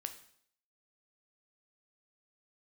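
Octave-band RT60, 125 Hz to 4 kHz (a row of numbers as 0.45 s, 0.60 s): 0.55 s, 0.65 s, 0.60 s, 0.60 s, 0.60 s, 0.60 s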